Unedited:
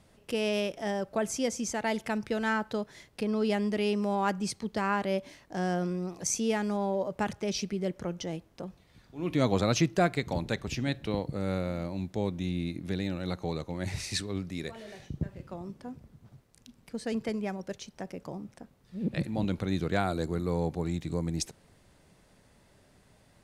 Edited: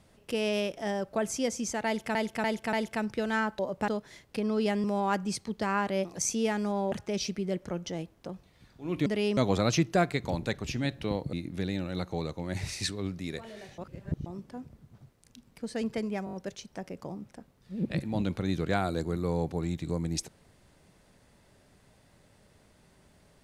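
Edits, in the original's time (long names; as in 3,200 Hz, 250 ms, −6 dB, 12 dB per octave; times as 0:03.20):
0:01.86–0:02.15: repeat, 4 plays
0:03.68–0:03.99: move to 0:09.40
0:05.20–0:06.10: remove
0:06.97–0:07.26: move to 0:02.72
0:11.36–0:12.64: remove
0:15.09–0:15.57: reverse
0:17.56: stutter 0.02 s, 5 plays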